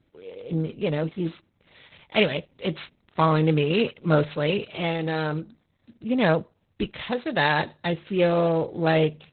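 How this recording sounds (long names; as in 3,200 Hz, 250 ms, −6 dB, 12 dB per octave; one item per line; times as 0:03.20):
a buzz of ramps at a fixed pitch in blocks of 8 samples
Opus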